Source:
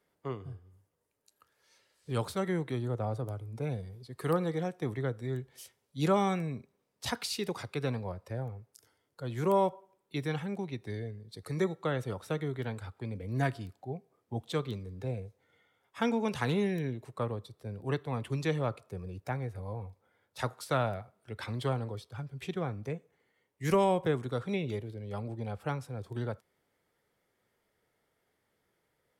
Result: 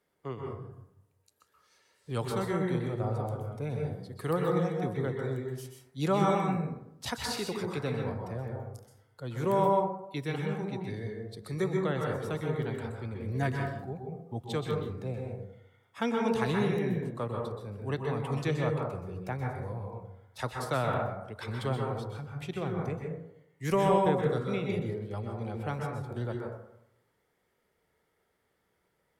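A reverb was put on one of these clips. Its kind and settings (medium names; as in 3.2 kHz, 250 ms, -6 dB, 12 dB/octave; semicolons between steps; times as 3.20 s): plate-style reverb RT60 0.79 s, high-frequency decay 0.3×, pre-delay 115 ms, DRR 0 dB; trim -1 dB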